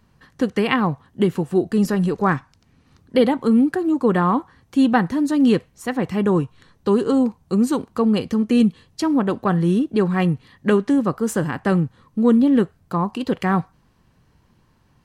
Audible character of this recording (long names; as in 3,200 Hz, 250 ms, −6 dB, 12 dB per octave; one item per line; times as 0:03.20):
background noise floor −60 dBFS
spectral slope −6.5 dB per octave